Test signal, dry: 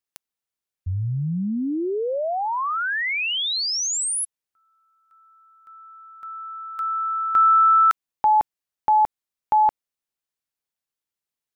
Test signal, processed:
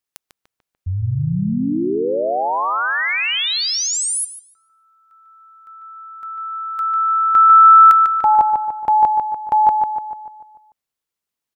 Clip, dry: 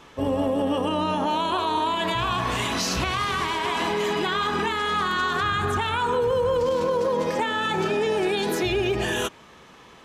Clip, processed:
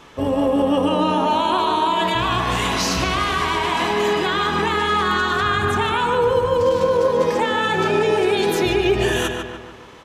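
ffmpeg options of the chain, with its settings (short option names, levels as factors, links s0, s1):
-filter_complex "[0:a]asplit=2[s0][s1];[s1]adelay=147,lowpass=f=3000:p=1,volume=0.631,asplit=2[s2][s3];[s3]adelay=147,lowpass=f=3000:p=1,volume=0.53,asplit=2[s4][s5];[s5]adelay=147,lowpass=f=3000:p=1,volume=0.53,asplit=2[s6][s7];[s7]adelay=147,lowpass=f=3000:p=1,volume=0.53,asplit=2[s8][s9];[s9]adelay=147,lowpass=f=3000:p=1,volume=0.53,asplit=2[s10][s11];[s11]adelay=147,lowpass=f=3000:p=1,volume=0.53,asplit=2[s12][s13];[s13]adelay=147,lowpass=f=3000:p=1,volume=0.53[s14];[s0][s2][s4][s6][s8][s10][s12][s14]amix=inputs=8:normalize=0,volume=1.5"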